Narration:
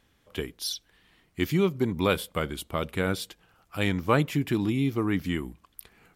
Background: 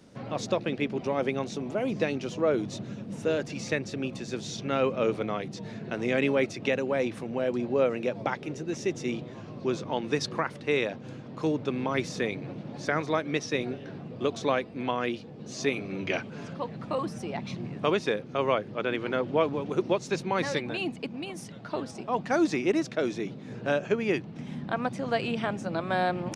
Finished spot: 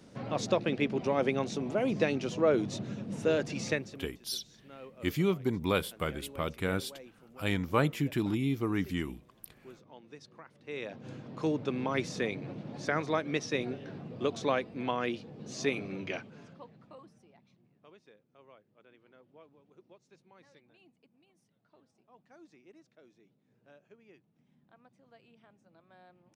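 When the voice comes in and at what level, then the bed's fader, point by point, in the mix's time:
3.65 s, -4.5 dB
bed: 3.70 s -0.5 dB
4.18 s -22.5 dB
10.47 s -22.5 dB
11.08 s -3 dB
15.85 s -3 dB
17.58 s -32 dB

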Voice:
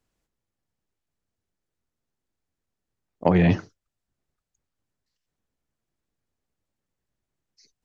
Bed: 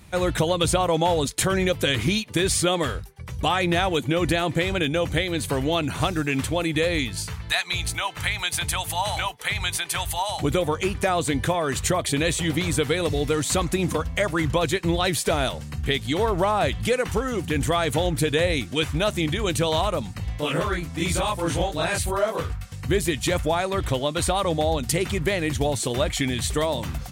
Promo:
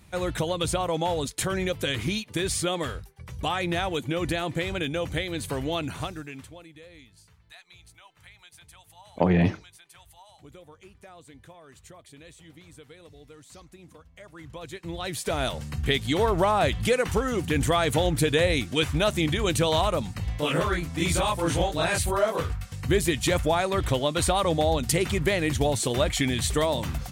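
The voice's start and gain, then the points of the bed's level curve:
5.95 s, -2.5 dB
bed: 5.88 s -5.5 dB
6.76 s -26 dB
14.12 s -26 dB
15.60 s -0.5 dB

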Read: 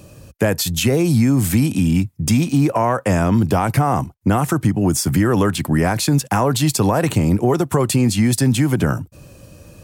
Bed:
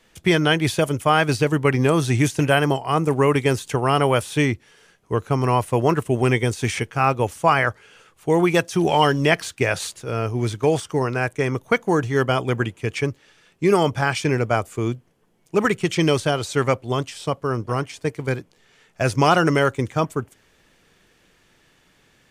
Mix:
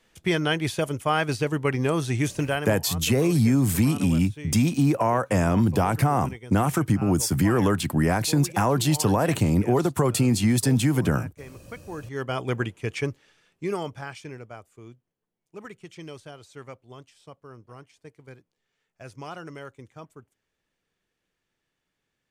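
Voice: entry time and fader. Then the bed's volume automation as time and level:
2.25 s, -5.0 dB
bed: 2.43 s -6 dB
2.99 s -21 dB
11.77 s -21 dB
12.50 s -4.5 dB
13.12 s -4.5 dB
14.58 s -22 dB

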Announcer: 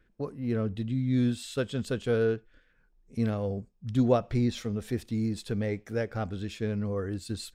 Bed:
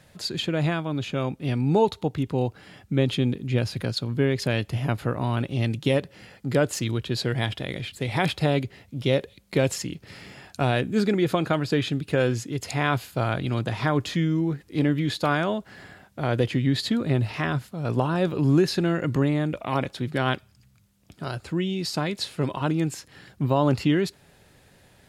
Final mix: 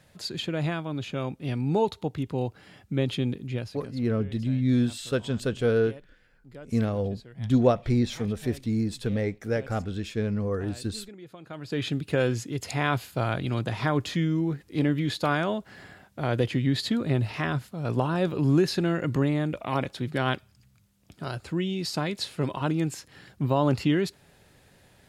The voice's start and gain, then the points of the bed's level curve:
3.55 s, +3.0 dB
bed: 3.43 s -4 dB
4.12 s -23 dB
11.38 s -23 dB
11.86 s -2 dB

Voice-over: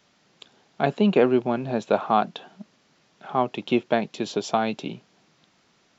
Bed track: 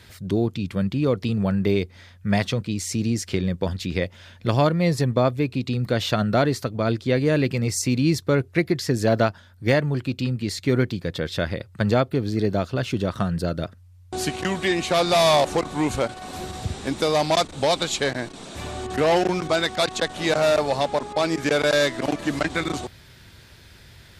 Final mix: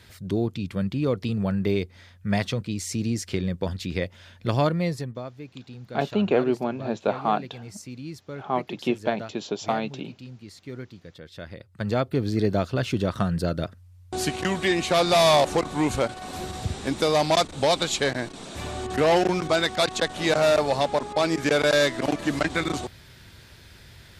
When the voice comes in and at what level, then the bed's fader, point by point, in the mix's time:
5.15 s, -3.0 dB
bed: 4.78 s -3 dB
5.25 s -17 dB
11.26 s -17 dB
12.21 s -0.5 dB

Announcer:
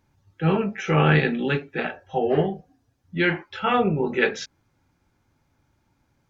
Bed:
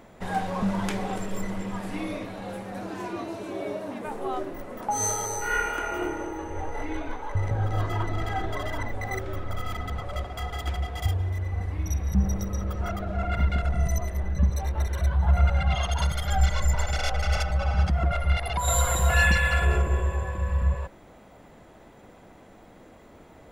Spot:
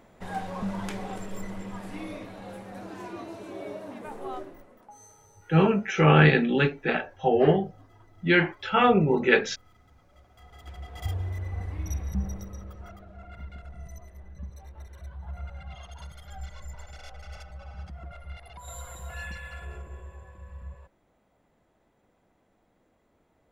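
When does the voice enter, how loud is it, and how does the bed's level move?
5.10 s, +1.0 dB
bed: 4.35 s -5.5 dB
5.09 s -28 dB
10.09 s -28 dB
11.15 s -4 dB
11.96 s -4 dB
13.13 s -18 dB

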